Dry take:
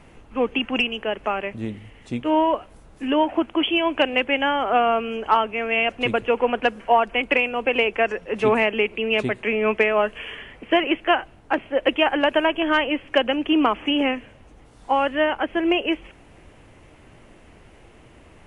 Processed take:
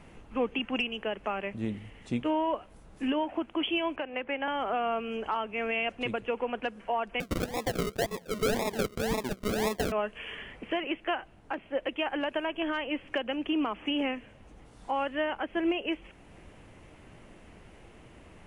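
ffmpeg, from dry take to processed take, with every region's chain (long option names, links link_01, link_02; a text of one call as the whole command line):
ffmpeg -i in.wav -filter_complex "[0:a]asettb=1/sr,asplit=3[link_01][link_02][link_03];[link_01]atrim=end=3.964[link_04];[link_02]atrim=start=3.96:end=4.48,asetpts=PTS-STARTPTS,afade=type=in:duration=0.004:curve=qsin,afade=type=out:start_time=0.516:duration=0.004:curve=qsin,lowpass=2100,acrossover=split=240|540[link_05][link_06][link_07];[link_05]acompressor=threshold=-49dB:ratio=4[link_08];[link_06]acompressor=threshold=-36dB:ratio=4[link_09];[link_07]acompressor=threshold=-28dB:ratio=4[link_10];[link_08][link_09][link_10]amix=inputs=3:normalize=0[link_11];[link_03]atrim=start=4.476[link_12];[link_04][link_11]acrossfade=duration=0.004:curve1=hsin:curve2=qsin[link_13];[link_13][link_12]acrossfade=duration=0.004:curve1=qsin:curve2=hsin,asettb=1/sr,asplit=3[link_14][link_15][link_16];[link_14]atrim=end=7.204[link_17];[link_15]atrim=start=7.2:end=9.92,asetpts=PTS-STARTPTS,afade=type=in:duration=0.004:curve=qsin,afade=type=out:start_time=2.716:duration=0.004:curve=qsin,highpass=190,acrusher=samples=41:mix=1:aa=0.000001:lfo=1:lforange=24.6:lforate=1.9[link_18];[link_16]atrim=start=9.916[link_19];[link_17][link_18]acrossfade=duration=0.004:curve1=hsin:curve2=qsin[link_20];[link_20][link_19]acrossfade=duration=0.004:curve1=qsin:curve2=hsin,equalizer=frequency=190:width=4.7:gain=4.5,alimiter=limit=-17dB:level=0:latency=1:release=461,volume=-3.5dB" out.wav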